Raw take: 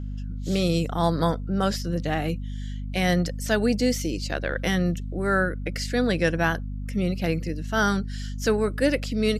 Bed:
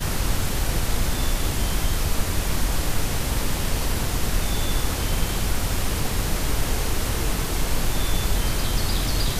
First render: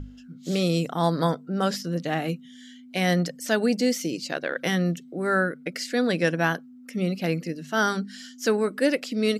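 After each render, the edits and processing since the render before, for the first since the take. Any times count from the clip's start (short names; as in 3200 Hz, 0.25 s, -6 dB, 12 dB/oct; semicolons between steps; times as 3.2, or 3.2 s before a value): notches 50/100/150/200 Hz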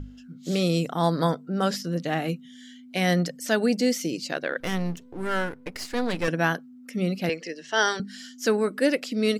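4.6–6.28 half-wave gain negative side -12 dB; 7.29–8 speaker cabinet 430–8300 Hz, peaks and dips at 430 Hz +5 dB, 910 Hz +4 dB, 1300 Hz -5 dB, 1800 Hz +8 dB, 3100 Hz +7 dB, 5400 Hz +6 dB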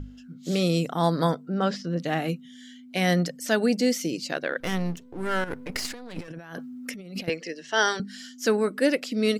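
1.54–1.99 air absorption 120 m; 5.44–7.28 negative-ratio compressor -37 dBFS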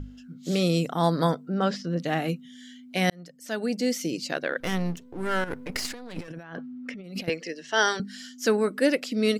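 3.1–4.17 fade in; 6.43–7.04 LPF 3100 Hz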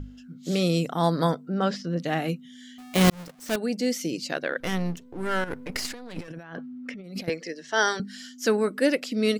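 2.78–3.56 half-waves squared off; 7–7.97 bell 2800 Hz -8.5 dB 0.25 oct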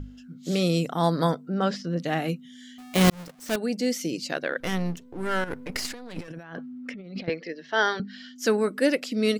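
6.93–8.36 LPF 4300 Hz 24 dB/oct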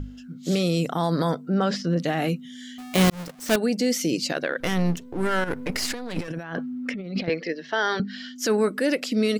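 in parallel at -1.5 dB: vocal rider within 4 dB; on the sum: limiter -14 dBFS, peak gain reduction 8 dB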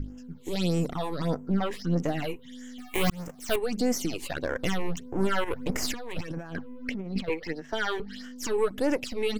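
half-wave gain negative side -7 dB; phaser stages 8, 1.6 Hz, lowest notch 180–4100 Hz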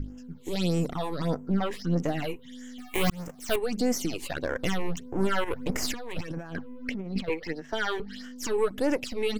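nothing audible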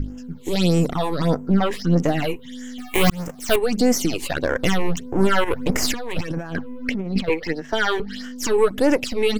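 gain +8.5 dB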